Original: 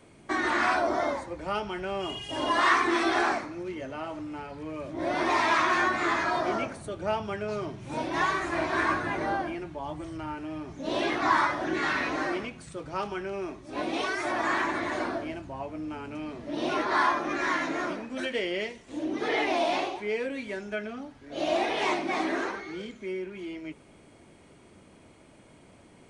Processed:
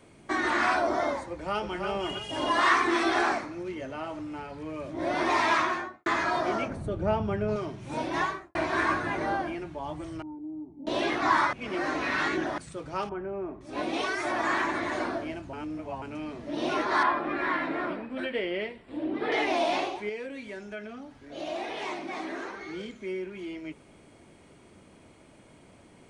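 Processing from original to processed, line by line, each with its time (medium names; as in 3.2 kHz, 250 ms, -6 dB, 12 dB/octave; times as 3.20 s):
1.29–1.86 s: echo throw 320 ms, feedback 35%, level -5 dB
5.52–6.06 s: studio fade out
6.68–7.56 s: tilt EQ -3 dB/octave
8.14–8.55 s: studio fade out
10.22–10.87 s: cascade formant filter u
11.53–12.58 s: reverse
13.09–13.61 s: low-pass 1.1 kHz
15.53–16.02 s: reverse
17.03–19.32 s: boxcar filter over 7 samples
20.09–22.61 s: compression 1.5:1, threshold -44 dBFS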